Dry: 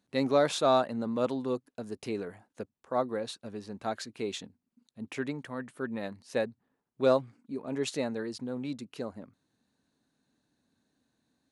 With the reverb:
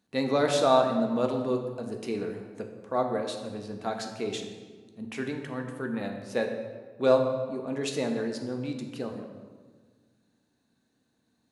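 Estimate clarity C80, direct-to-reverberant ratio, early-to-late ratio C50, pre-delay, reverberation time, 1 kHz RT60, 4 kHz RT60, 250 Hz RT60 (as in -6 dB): 7.5 dB, 3.0 dB, 6.0 dB, 3 ms, 1.5 s, 1.4 s, 1.0 s, 2.0 s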